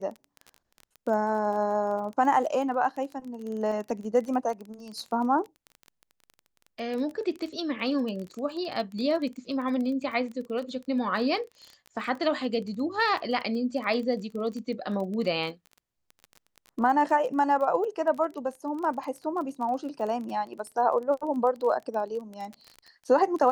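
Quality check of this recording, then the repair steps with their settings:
surface crackle 22 per second −34 dBFS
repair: click removal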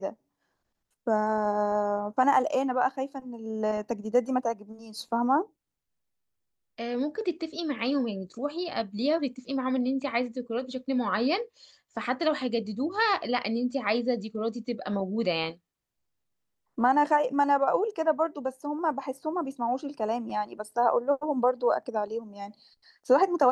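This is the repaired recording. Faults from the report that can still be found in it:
none of them is left

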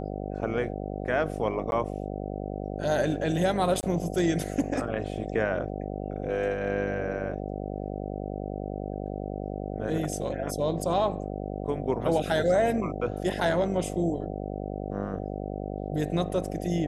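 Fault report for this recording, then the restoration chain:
mains buzz 50 Hz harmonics 15 −34 dBFS
0:01.71–0:01.72: drop-out 11 ms
0:03.81–0:03.83: drop-out 19 ms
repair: hum removal 50 Hz, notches 15
repair the gap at 0:01.71, 11 ms
repair the gap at 0:03.81, 19 ms

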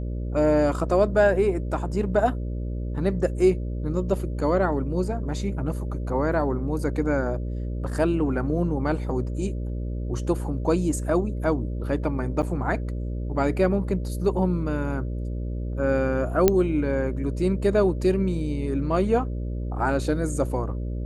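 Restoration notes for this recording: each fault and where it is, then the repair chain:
mains buzz 60 Hz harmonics 10 −29 dBFS
0:12.42–0:12.43: drop-out 7.5 ms
0:16.48: click −4 dBFS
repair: click removal
hum removal 60 Hz, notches 10
repair the gap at 0:12.42, 7.5 ms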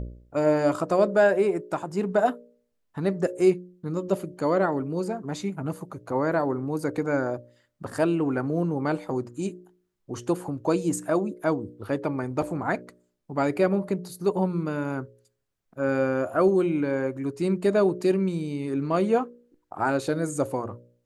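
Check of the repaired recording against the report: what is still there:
none of them is left

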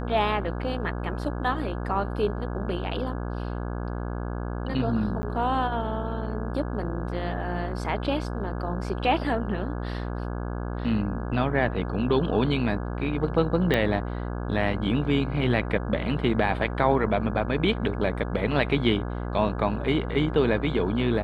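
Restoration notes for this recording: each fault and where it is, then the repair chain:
mains buzz 60 Hz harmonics 28 −31 dBFS
0:05.22–0:05.23: drop-out 10 ms
0:13.74: click −11 dBFS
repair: click removal
hum removal 60 Hz, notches 28
repair the gap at 0:05.22, 10 ms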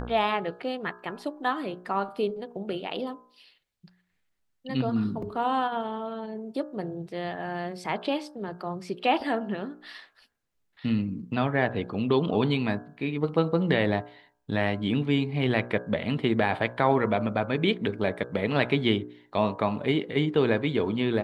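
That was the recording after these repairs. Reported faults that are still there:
0:13.74: click

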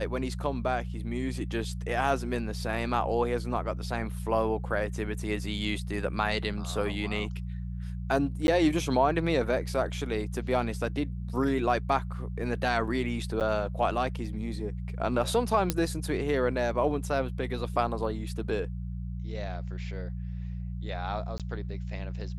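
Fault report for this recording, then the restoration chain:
mains hum 60 Hz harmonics 3 −35 dBFS
0:08.47–0:08.48: drop-out 11 ms
0:13.40–0:13.41: drop-out 8.7 ms
0:15.70: click −9 dBFS
0:21.38–0:21.40: drop-out 17 ms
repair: click removal
hum removal 60 Hz, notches 3
repair the gap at 0:08.47, 11 ms
repair the gap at 0:13.40, 8.7 ms
repair the gap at 0:21.38, 17 ms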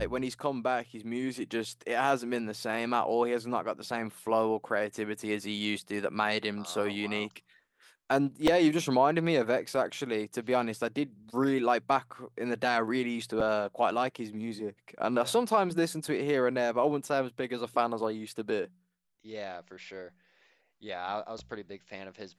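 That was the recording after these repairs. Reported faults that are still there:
none of them is left

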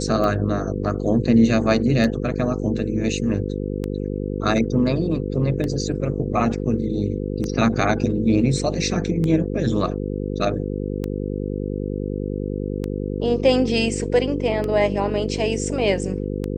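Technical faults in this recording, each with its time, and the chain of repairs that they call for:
mains buzz 50 Hz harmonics 10 −26 dBFS
scratch tick 33 1/3 rpm −14 dBFS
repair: click removal
hum removal 50 Hz, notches 10

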